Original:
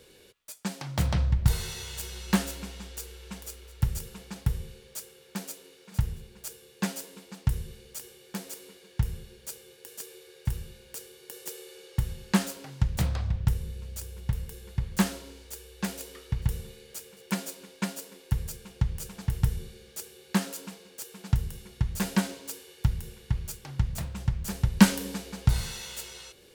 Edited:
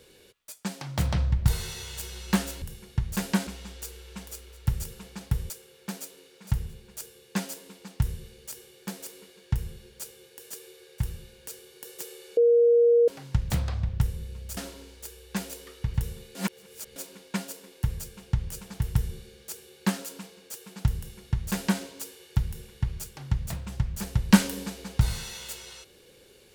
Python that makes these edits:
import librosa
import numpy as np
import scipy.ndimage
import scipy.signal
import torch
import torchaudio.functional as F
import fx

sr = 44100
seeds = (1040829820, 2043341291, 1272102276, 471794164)

y = fx.edit(x, sr, fx.cut(start_s=4.65, length_s=0.32),
    fx.bleep(start_s=11.84, length_s=0.71, hz=472.0, db=-15.5),
    fx.cut(start_s=14.04, length_s=1.01),
    fx.reverse_span(start_s=16.83, length_s=0.61),
    fx.duplicate(start_s=21.45, length_s=0.85, to_s=2.62), tone=tone)